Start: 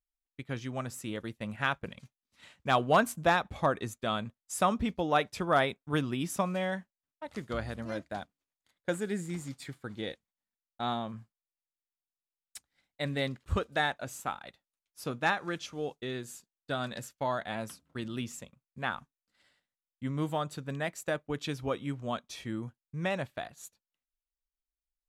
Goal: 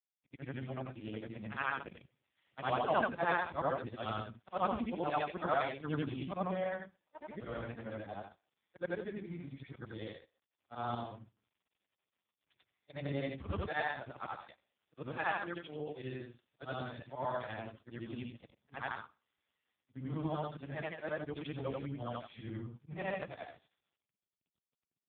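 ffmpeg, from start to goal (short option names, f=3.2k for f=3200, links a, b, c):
-filter_complex "[0:a]afftfilt=real='re':imag='-im':win_size=8192:overlap=0.75,agate=range=-11dB:threshold=-54dB:ratio=16:detection=peak,asplit=2[a][b];[b]adelay=130,highpass=300,lowpass=3.4k,asoftclip=type=hard:threshold=-28.5dB,volume=-27dB[c];[a][c]amix=inputs=2:normalize=0,asubboost=boost=6:cutoff=69,volume=1.5dB" -ar 8000 -c:a libopencore_amrnb -b:a 4750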